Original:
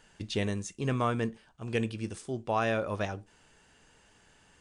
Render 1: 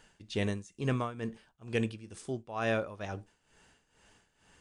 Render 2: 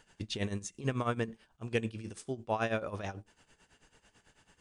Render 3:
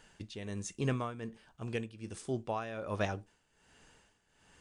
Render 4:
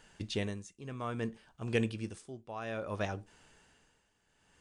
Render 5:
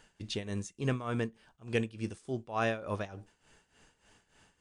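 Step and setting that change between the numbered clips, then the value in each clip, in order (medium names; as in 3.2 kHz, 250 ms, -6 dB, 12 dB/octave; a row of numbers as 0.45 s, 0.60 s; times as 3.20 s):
tremolo, rate: 2.2 Hz, 9.1 Hz, 1.3 Hz, 0.6 Hz, 3.4 Hz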